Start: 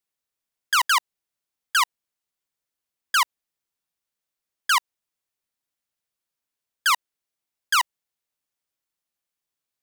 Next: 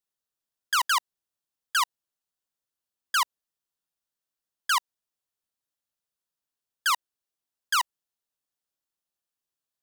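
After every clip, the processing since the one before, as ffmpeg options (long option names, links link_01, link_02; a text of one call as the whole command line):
ffmpeg -i in.wav -af "equalizer=frequency=2200:width_type=o:width=0.32:gain=-7.5,volume=-3.5dB" out.wav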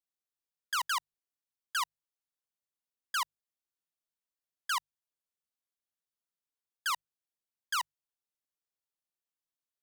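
ffmpeg -i in.wav -af "bandreject=frequency=50:width_type=h:width=6,bandreject=frequency=100:width_type=h:width=6,bandreject=frequency=150:width_type=h:width=6,volume=-8dB" out.wav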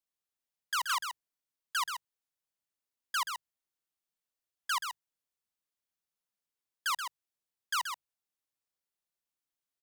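ffmpeg -i in.wav -af "aecho=1:1:129:0.447" out.wav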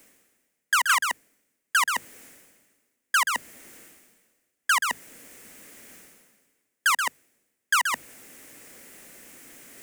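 ffmpeg -i in.wav -af "equalizer=frequency=250:width_type=o:width=1:gain=12,equalizer=frequency=500:width_type=o:width=1:gain=7,equalizer=frequency=1000:width_type=o:width=1:gain=-5,equalizer=frequency=2000:width_type=o:width=1:gain=10,equalizer=frequency=4000:width_type=o:width=1:gain=-8,equalizer=frequency=8000:width_type=o:width=1:gain=5,areverse,acompressor=mode=upward:threshold=-31dB:ratio=2.5,areverse,volume=8.5dB" out.wav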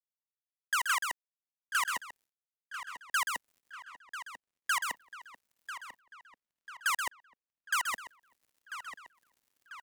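ffmpeg -i in.wav -filter_complex "[0:a]acrusher=bits=5:mix=0:aa=0.5,asplit=2[link_01][link_02];[link_02]adelay=993,lowpass=frequency=4300:poles=1,volume=-11dB,asplit=2[link_03][link_04];[link_04]adelay=993,lowpass=frequency=4300:poles=1,volume=0.54,asplit=2[link_05][link_06];[link_06]adelay=993,lowpass=frequency=4300:poles=1,volume=0.54,asplit=2[link_07][link_08];[link_08]adelay=993,lowpass=frequency=4300:poles=1,volume=0.54,asplit=2[link_09][link_10];[link_10]adelay=993,lowpass=frequency=4300:poles=1,volume=0.54,asplit=2[link_11][link_12];[link_12]adelay=993,lowpass=frequency=4300:poles=1,volume=0.54[link_13];[link_01][link_03][link_05][link_07][link_09][link_11][link_13]amix=inputs=7:normalize=0,volume=-8.5dB" out.wav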